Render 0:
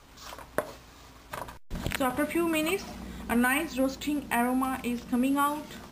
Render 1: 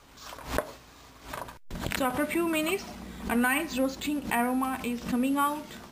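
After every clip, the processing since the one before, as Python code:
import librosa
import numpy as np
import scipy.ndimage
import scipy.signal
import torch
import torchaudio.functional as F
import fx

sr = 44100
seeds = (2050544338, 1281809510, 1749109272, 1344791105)

y = fx.low_shelf(x, sr, hz=130.0, db=-4.0)
y = fx.pre_swell(y, sr, db_per_s=140.0)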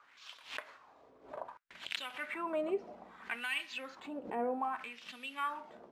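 y = fx.wah_lfo(x, sr, hz=0.63, low_hz=460.0, high_hz=3300.0, q=2.5)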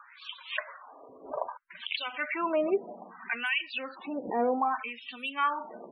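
y = fx.rider(x, sr, range_db=4, speed_s=2.0)
y = fx.spec_topn(y, sr, count=32)
y = y * 10.0 ** (7.5 / 20.0)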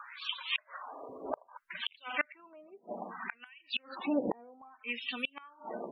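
y = fx.gate_flip(x, sr, shuts_db=-24.0, range_db=-32)
y = y * 10.0 ** (5.0 / 20.0)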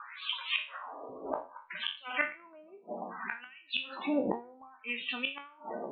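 y = fx.spec_trails(x, sr, decay_s=0.34)
y = scipy.signal.sosfilt(scipy.signal.butter(16, 4100.0, 'lowpass', fs=sr, output='sos'), y)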